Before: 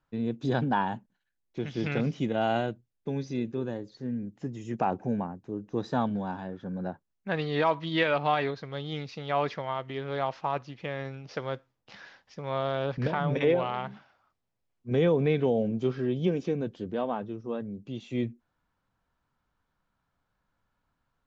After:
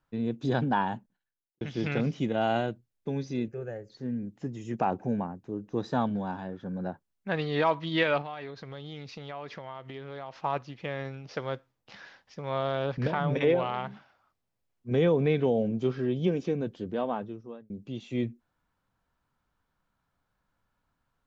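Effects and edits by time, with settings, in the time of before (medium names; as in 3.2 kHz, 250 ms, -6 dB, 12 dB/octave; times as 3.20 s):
0.91–1.61 s: studio fade out
3.48–3.90 s: static phaser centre 1 kHz, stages 6
8.21–10.44 s: compression 4:1, threshold -37 dBFS
17.18–17.70 s: fade out linear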